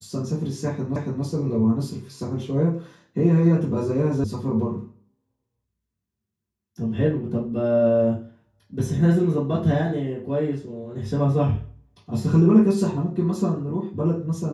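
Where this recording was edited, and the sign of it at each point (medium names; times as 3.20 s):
0.96 s: repeat of the last 0.28 s
4.24 s: sound stops dead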